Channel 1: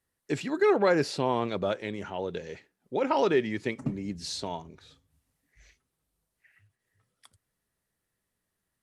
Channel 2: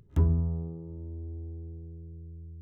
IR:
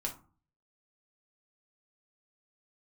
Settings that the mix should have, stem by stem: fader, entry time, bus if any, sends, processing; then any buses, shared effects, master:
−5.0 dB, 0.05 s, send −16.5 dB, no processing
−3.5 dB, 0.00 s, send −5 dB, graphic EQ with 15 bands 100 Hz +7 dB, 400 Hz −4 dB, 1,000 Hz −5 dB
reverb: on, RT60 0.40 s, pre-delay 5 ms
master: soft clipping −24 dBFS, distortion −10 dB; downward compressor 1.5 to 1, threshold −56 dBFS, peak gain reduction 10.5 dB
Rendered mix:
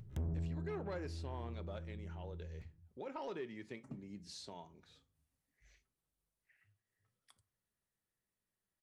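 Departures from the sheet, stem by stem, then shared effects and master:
stem 1 −5.0 dB → −12.5 dB
reverb return +6.5 dB

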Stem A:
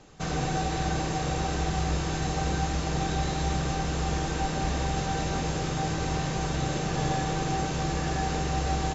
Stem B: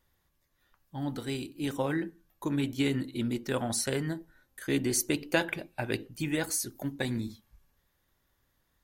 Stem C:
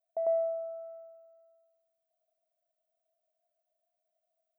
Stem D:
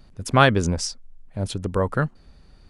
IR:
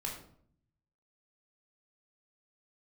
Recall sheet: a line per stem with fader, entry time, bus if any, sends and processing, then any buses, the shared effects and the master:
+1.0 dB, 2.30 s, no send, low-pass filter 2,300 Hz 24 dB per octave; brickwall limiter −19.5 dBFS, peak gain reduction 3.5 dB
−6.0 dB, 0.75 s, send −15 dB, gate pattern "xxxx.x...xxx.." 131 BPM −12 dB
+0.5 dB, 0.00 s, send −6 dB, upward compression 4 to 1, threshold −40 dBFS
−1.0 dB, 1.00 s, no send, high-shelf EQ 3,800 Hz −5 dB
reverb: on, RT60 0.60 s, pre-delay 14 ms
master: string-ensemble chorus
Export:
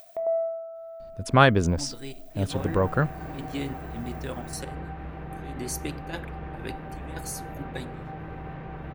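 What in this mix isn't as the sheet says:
stem A +1.0 dB → −8.5 dB
master: missing string-ensemble chorus

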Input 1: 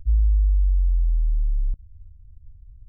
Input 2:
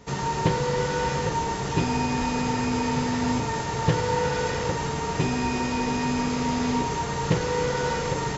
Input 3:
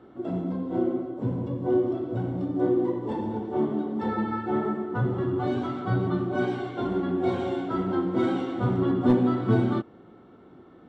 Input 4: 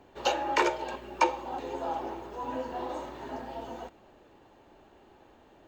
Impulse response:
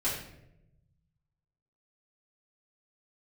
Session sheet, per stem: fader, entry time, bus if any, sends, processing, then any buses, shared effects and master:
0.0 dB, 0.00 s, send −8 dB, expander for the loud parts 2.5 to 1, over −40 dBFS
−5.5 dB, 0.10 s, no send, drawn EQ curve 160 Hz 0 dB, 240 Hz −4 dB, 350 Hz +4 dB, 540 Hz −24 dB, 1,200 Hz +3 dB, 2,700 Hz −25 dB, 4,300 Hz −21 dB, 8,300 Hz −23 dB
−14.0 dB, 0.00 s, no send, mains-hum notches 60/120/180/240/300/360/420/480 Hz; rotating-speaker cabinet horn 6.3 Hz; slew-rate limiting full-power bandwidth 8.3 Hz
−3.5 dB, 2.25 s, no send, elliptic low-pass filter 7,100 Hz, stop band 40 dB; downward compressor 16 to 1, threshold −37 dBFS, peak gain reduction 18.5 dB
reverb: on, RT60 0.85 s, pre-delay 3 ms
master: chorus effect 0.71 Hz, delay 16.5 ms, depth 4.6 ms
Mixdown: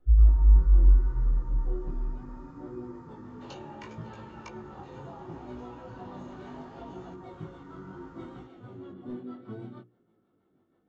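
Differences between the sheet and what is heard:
stem 2 −5.5 dB → −16.0 dB
stem 3: missing slew-rate limiting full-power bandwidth 8.3 Hz
stem 4: entry 2.25 s → 3.25 s

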